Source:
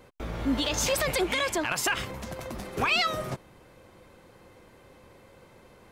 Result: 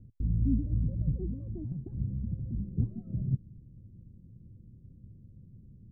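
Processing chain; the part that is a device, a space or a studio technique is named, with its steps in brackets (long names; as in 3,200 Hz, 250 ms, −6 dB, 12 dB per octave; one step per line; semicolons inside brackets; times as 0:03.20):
the neighbour's flat through the wall (low-pass filter 200 Hz 24 dB per octave; parametric band 110 Hz +4.5 dB 0.45 octaves)
level +7 dB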